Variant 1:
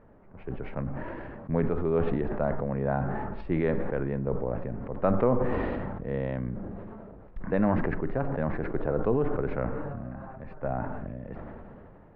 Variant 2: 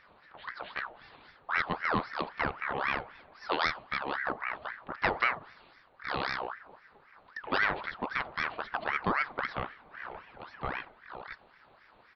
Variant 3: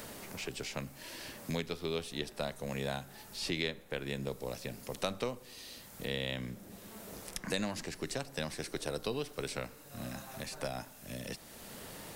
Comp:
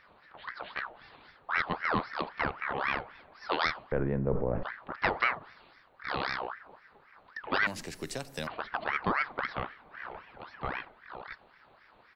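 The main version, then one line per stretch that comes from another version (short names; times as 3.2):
2
3.92–4.63 from 1
7.67–8.47 from 3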